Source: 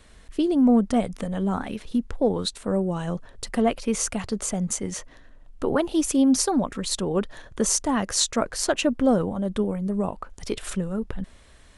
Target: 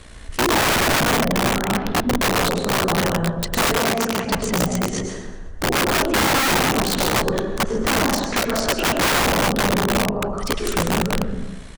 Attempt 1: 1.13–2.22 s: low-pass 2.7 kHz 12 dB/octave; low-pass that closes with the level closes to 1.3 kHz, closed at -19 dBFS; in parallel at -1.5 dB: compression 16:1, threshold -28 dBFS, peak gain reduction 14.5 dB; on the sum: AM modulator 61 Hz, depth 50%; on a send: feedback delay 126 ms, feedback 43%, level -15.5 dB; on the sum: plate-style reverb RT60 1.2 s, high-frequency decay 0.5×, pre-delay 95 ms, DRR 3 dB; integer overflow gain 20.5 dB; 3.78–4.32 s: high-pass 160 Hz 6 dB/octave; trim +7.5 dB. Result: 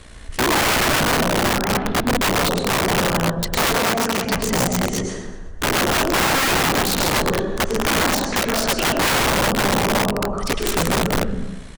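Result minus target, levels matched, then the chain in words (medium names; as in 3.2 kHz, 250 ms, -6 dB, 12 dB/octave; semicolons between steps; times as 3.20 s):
compression: peak gain reduction -7 dB
1.13–2.22 s: low-pass 2.7 kHz 12 dB/octave; low-pass that closes with the level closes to 1.3 kHz, closed at -19 dBFS; in parallel at -1.5 dB: compression 16:1, threshold -35.5 dBFS, peak gain reduction 21.5 dB; on the sum: AM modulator 61 Hz, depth 50%; on a send: feedback delay 126 ms, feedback 43%, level -15.5 dB; on the sum: plate-style reverb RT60 1.2 s, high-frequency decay 0.5×, pre-delay 95 ms, DRR 3 dB; integer overflow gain 20.5 dB; 3.78–4.32 s: high-pass 160 Hz 6 dB/octave; trim +7.5 dB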